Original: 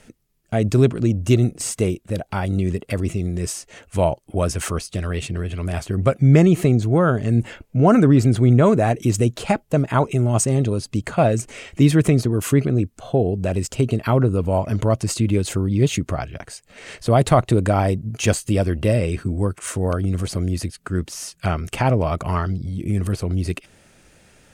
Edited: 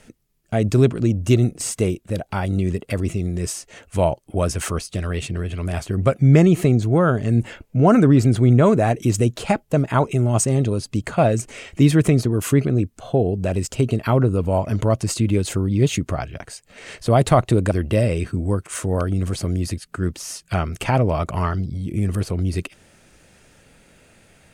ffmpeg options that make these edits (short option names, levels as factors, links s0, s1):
-filter_complex "[0:a]asplit=2[s0][s1];[s0]atrim=end=17.712[s2];[s1]atrim=start=18.628[s3];[s2][s3]acrossfade=d=0.004:c1=hsin:c2=hsin"